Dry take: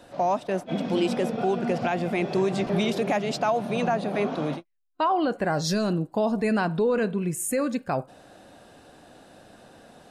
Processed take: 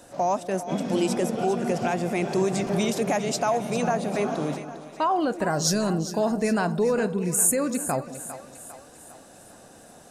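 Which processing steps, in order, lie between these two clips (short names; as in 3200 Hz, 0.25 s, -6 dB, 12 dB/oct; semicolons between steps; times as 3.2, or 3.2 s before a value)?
resonant high shelf 5100 Hz +8.5 dB, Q 1.5; split-band echo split 550 Hz, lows 0.183 s, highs 0.402 s, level -12 dB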